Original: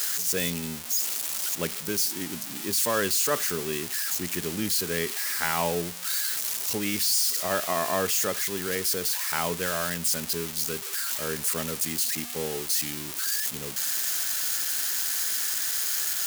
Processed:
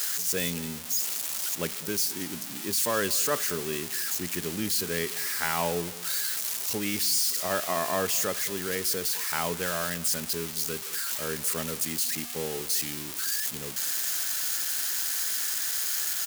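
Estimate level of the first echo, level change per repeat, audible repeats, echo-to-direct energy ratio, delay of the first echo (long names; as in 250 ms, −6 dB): −19.0 dB, −9.0 dB, 2, −18.5 dB, 212 ms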